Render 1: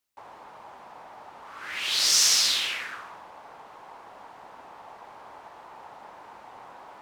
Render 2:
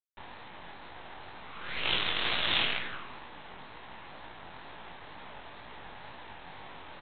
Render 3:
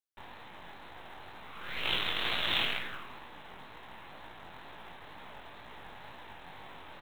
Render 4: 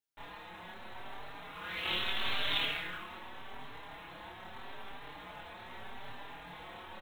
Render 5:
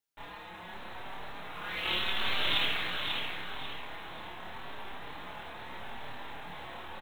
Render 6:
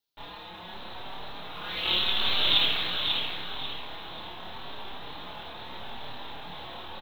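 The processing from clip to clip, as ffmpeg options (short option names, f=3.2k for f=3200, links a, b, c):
-af "aresample=8000,acrusher=bits=5:dc=4:mix=0:aa=0.000001,aresample=44100,flanger=delay=16:depth=7.9:speed=2.1,volume=4.5dB"
-af "acrusher=bits=6:mode=log:mix=0:aa=0.000001,volume=-2dB"
-filter_complex "[0:a]asplit=2[a][b];[b]adelay=28,volume=-4dB[c];[a][c]amix=inputs=2:normalize=0,acompressor=threshold=-36dB:ratio=1.5,asplit=2[d][e];[e]adelay=4.6,afreqshift=0.81[f];[d][f]amix=inputs=2:normalize=1,volume=3dB"
-af "aecho=1:1:541|1082|1623|2164:0.562|0.191|0.065|0.0221,volume=2.5dB"
-af "equalizer=f=2k:t=o:w=1:g=-7,equalizer=f=4k:t=o:w=1:g=11,equalizer=f=8k:t=o:w=1:g=-10,volume=3dB"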